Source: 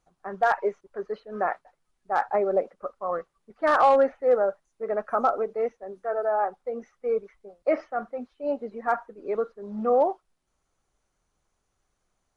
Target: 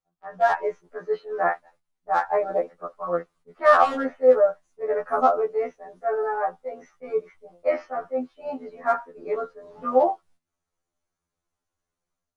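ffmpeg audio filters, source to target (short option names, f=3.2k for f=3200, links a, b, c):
-af "agate=range=-12dB:threshold=-58dB:ratio=16:detection=peak,dynaudnorm=f=270:g=3:m=7.5dB,afftfilt=real='re*2*eq(mod(b,4),0)':imag='im*2*eq(mod(b,4),0)':win_size=2048:overlap=0.75,volume=-2dB"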